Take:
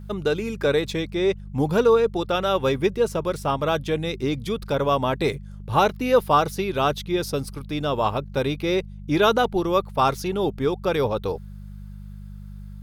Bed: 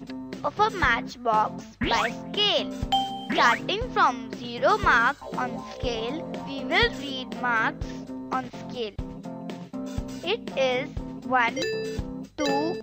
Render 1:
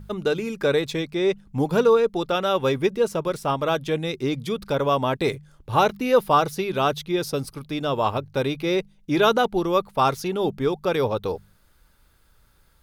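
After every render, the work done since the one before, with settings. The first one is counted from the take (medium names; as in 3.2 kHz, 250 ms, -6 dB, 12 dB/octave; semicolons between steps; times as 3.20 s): de-hum 50 Hz, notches 4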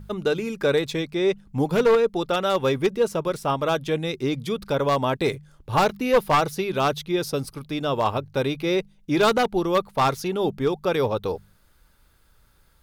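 one-sided wavefolder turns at -13 dBFS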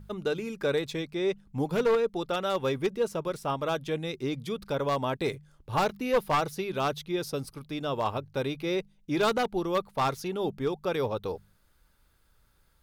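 trim -6.5 dB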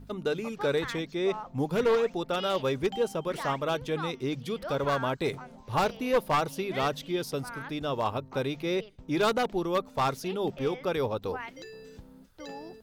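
add bed -17 dB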